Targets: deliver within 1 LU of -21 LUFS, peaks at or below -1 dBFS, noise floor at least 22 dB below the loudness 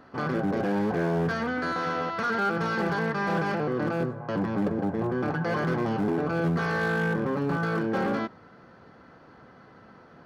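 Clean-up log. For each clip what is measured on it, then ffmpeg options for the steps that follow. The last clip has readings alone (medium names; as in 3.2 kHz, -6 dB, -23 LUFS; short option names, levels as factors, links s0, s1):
loudness -27.5 LUFS; peak level -18.5 dBFS; loudness target -21.0 LUFS
-> -af "volume=2.11"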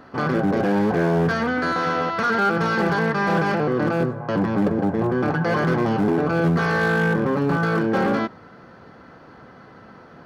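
loudness -21.0 LUFS; peak level -12.0 dBFS; noise floor -46 dBFS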